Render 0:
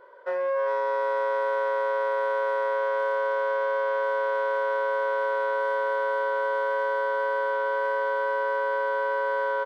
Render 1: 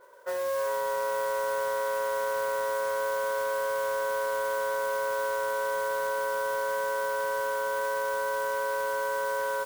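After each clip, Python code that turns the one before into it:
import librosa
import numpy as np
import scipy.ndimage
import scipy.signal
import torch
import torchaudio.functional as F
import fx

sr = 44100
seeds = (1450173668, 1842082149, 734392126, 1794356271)

y = fx.mod_noise(x, sr, seeds[0], snr_db=15)
y = y * librosa.db_to_amplitude(-3.5)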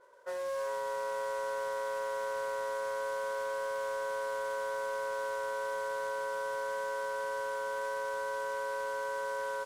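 y = scipy.signal.sosfilt(scipy.signal.butter(2, 9300.0, 'lowpass', fs=sr, output='sos'), x)
y = y * librosa.db_to_amplitude(-6.0)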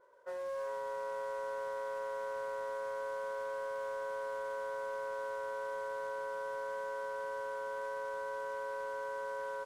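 y = fx.high_shelf(x, sr, hz=2400.0, db=-8.5)
y = y * librosa.db_to_amplitude(-3.0)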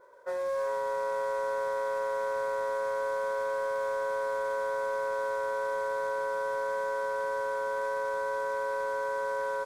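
y = fx.notch(x, sr, hz=2900.0, q=6.3)
y = y * librosa.db_to_amplitude(8.0)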